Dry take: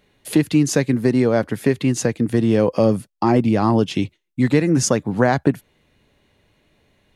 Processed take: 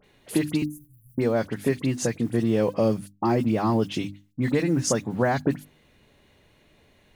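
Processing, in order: G.711 law mismatch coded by mu; 0.62–1.18 inverse Chebyshev band-stop 350–2900 Hz, stop band 80 dB; notches 50/100/150/200/250/300 Hz; dispersion highs, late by 42 ms, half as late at 2500 Hz; gain -6 dB

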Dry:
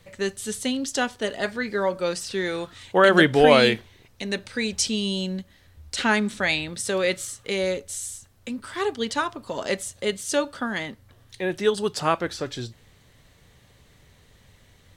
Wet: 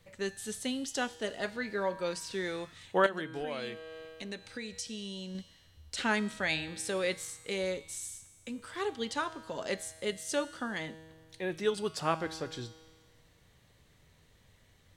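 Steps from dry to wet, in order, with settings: resonator 160 Hz, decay 1.6 s, mix 70%; 3.06–5.35 compressor 3:1, threshold -41 dBFS, peak gain reduction 15 dB; gain +1.5 dB

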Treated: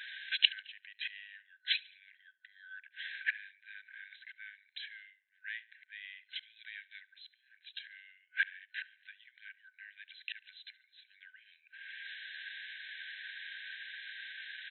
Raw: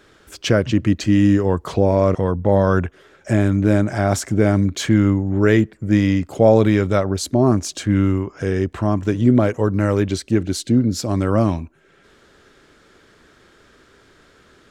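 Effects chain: flipped gate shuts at -16 dBFS, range -28 dB; feedback echo 71 ms, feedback 50%, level -22 dB; FFT band-pass 1500–4100 Hz; gain +11.5 dB

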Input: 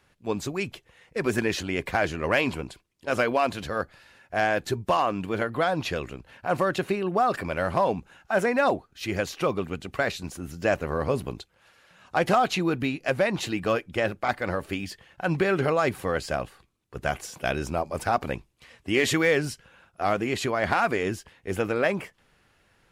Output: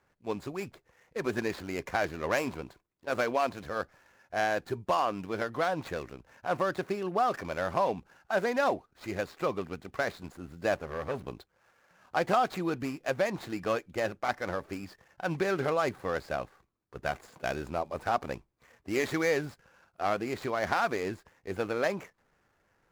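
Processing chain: median filter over 15 samples; low shelf 300 Hz -6.5 dB; 10.8–11.26 core saturation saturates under 1000 Hz; gain -3 dB

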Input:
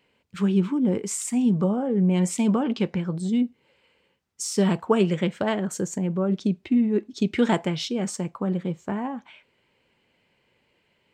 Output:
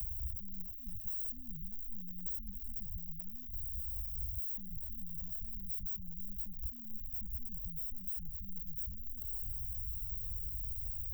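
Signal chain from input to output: zero-crossing step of -28.5 dBFS; inverse Chebyshev band-stop 350–6300 Hz, stop band 80 dB; three-band squash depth 100%; gain +9.5 dB

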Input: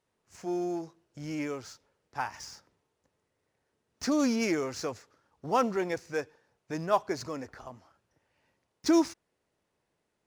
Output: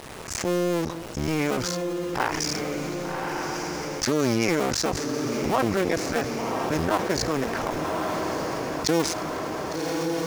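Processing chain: cycle switcher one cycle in 2, muted; on a send: diffused feedback echo 1.154 s, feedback 44%, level -13.5 dB; on the sum: fast leveller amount 70%; gain +2.5 dB

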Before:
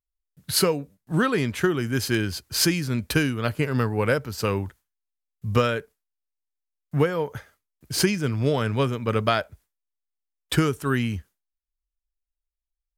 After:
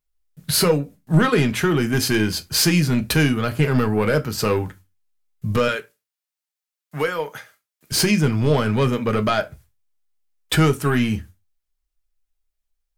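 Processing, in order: 5.68–7.92 HPF 1100 Hz 6 dB/oct; limiter -14 dBFS, peak gain reduction 6.5 dB; soft clip -18 dBFS, distortion -17 dB; reverb RT60 0.20 s, pre-delay 5 ms, DRR 6 dB; gain +7 dB

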